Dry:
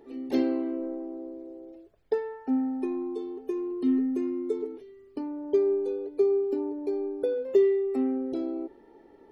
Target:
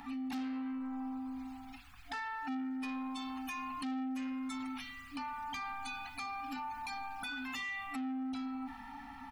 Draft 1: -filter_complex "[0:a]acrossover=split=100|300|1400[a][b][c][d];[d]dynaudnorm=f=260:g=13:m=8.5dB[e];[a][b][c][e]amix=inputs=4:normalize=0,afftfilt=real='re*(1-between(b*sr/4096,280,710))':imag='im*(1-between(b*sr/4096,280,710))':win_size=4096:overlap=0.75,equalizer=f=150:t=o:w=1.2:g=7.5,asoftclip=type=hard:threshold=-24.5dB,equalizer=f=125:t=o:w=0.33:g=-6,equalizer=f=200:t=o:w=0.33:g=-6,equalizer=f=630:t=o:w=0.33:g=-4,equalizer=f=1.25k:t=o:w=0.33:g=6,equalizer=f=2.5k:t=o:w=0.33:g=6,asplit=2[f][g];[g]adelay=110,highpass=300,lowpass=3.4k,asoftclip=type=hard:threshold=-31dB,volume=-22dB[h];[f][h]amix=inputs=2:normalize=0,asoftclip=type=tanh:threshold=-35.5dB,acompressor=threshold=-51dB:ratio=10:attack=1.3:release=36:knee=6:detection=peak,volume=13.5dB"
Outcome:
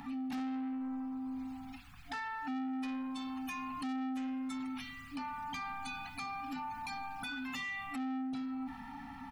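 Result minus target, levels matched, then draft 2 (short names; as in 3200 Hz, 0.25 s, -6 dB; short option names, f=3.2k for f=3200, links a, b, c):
125 Hz band +4.5 dB
-filter_complex "[0:a]acrossover=split=100|300|1400[a][b][c][d];[d]dynaudnorm=f=260:g=13:m=8.5dB[e];[a][b][c][e]amix=inputs=4:normalize=0,afftfilt=real='re*(1-between(b*sr/4096,280,710))':imag='im*(1-between(b*sr/4096,280,710))':win_size=4096:overlap=0.75,equalizer=f=150:t=o:w=1.2:g=-4,asoftclip=type=hard:threshold=-24.5dB,equalizer=f=125:t=o:w=0.33:g=-6,equalizer=f=200:t=o:w=0.33:g=-6,equalizer=f=630:t=o:w=0.33:g=-4,equalizer=f=1.25k:t=o:w=0.33:g=6,equalizer=f=2.5k:t=o:w=0.33:g=6,asplit=2[f][g];[g]adelay=110,highpass=300,lowpass=3.4k,asoftclip=type=hard:threshold=-31dB,volume=-22dB[h];[f][h]amix=inputs=2:normalize=0,asoftclip=type=tanh:threshold=-35.5dB,acompressor=threshold=-51dB:ratio=10:attack=1.3:release=36:knee=6:detection=peak,volume=13.5dB"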